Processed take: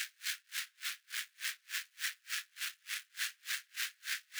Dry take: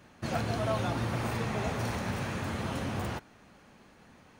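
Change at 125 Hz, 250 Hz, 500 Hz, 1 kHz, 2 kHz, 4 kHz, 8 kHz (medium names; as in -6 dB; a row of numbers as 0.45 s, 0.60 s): under -40 dB, under -40 dB, under -40 dB, -19.0 dB, +0.5 dB, +4.0 dB, +6.0 dB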